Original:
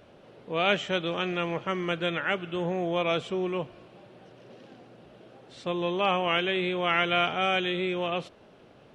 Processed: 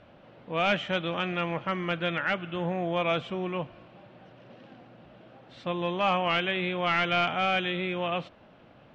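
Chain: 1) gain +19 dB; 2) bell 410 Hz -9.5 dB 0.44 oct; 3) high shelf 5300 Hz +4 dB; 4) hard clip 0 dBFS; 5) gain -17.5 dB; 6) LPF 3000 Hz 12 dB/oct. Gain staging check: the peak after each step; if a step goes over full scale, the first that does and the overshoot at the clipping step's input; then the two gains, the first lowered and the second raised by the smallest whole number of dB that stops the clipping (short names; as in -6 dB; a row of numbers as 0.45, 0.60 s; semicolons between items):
+9.0, +8.5, +9.0, 0.0, -17.5, -17.0 dBFS; step 1, 9.0 dB; step 1 +10 dB, step 5 -8.5 dB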